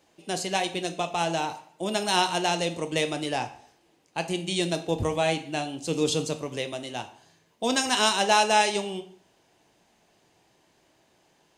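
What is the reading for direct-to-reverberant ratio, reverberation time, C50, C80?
8.0 dB, 0.55 s, 13.0 dB, 16.5 dB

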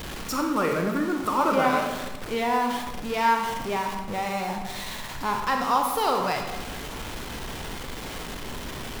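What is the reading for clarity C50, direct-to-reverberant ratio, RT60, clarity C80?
4.5 dB, 2.5 dB, 1.1 s, 7.0 dB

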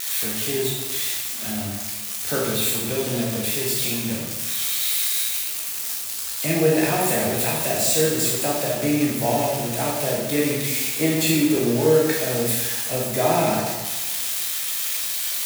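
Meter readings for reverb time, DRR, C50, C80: 1.2 s, -4.0 dB, 0.5 dB, 3.0 dB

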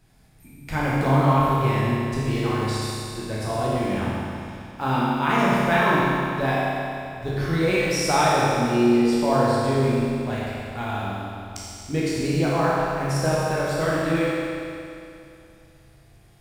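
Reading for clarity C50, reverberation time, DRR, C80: -3.5 dB, 2.6 s, -7.0 dB, -1.5 dB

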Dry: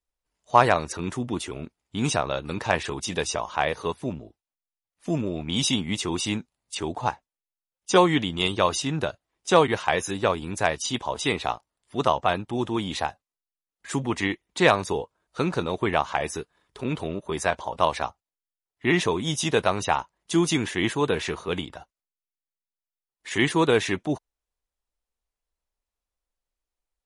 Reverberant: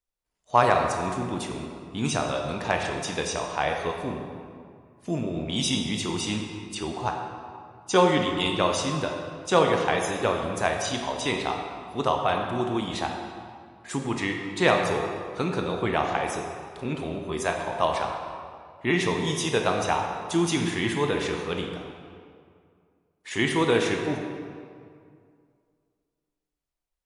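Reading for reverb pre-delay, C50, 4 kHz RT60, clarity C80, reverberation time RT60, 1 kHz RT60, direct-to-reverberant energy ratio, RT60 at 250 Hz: 17 ms, 3.5 dB, 1.4 s, 4.5 dB, 2.2 s, 2.2 s, 2.0 dB, 2.3 s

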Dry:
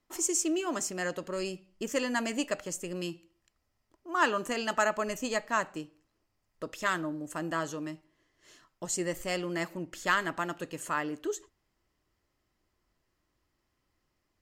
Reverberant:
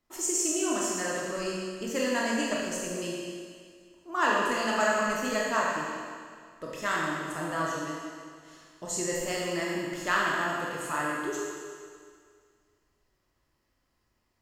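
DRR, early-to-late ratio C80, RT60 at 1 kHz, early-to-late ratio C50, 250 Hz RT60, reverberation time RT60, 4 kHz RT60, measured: -4.5 dB, 0.5 dB, 2.0 s, -1.0 dB, 2.0 s, 2.0 s, 2.0 s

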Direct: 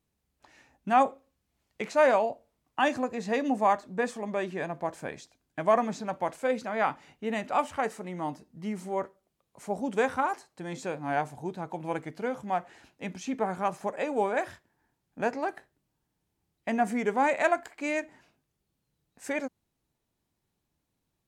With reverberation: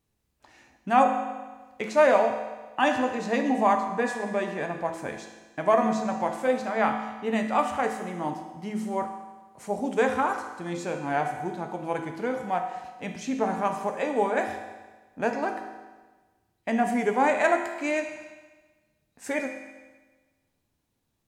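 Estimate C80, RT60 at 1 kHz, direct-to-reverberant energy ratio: 8.0 dB, 1.3 s, 3.5 dB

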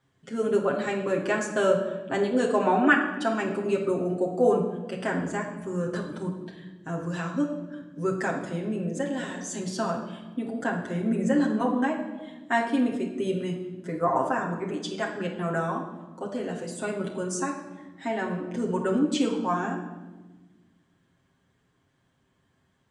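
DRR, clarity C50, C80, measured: -2.0 dB, 6.0 dB, 9.0 dB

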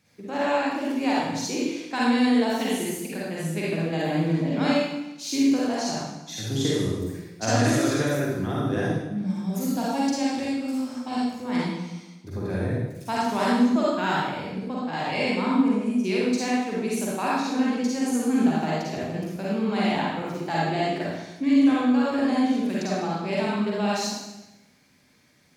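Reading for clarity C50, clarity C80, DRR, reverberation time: -4.0 dB, 0.5 dB, -6.5 dB, 0.95 s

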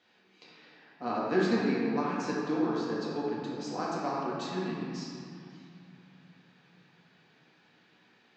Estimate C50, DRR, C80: -1.5 dB, -6.0 dB, 0.0 dB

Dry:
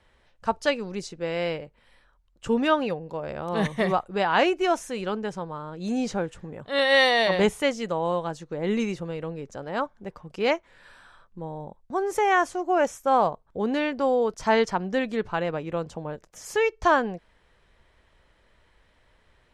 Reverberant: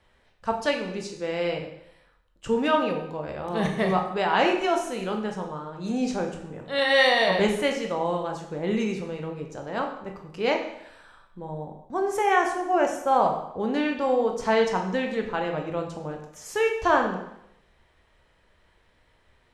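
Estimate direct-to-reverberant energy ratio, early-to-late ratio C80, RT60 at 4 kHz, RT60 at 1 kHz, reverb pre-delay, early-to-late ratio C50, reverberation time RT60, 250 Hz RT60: 2.5 dB, 9.0 dB, 0.75 s, 0.80 s, 7 ms, 6.5 dB, 0.80 s, 0.75 s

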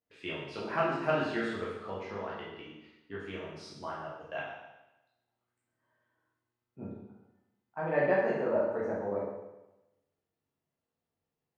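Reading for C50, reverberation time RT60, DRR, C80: 1.0 dB, 1.0 s, -7.0 dB, 4.0 dB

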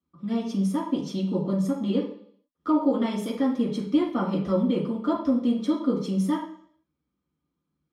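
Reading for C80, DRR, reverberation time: 9.5 dB, -6.5 dB, 0.60 s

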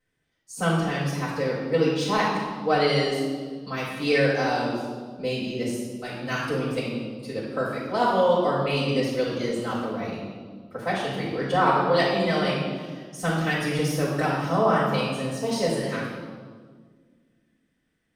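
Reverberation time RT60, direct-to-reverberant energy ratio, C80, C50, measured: 1.7 s, -9.0 dB, 2.5 dB, 0.5 dB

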